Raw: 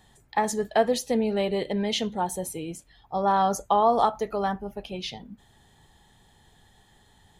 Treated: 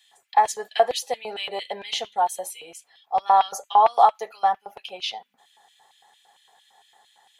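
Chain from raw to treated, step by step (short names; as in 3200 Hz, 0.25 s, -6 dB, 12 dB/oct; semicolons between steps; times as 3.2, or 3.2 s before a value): LFO high-pass square 4.4 Hz 740–2700 Hz; notch comb 310 Hz; gain +1.5 dB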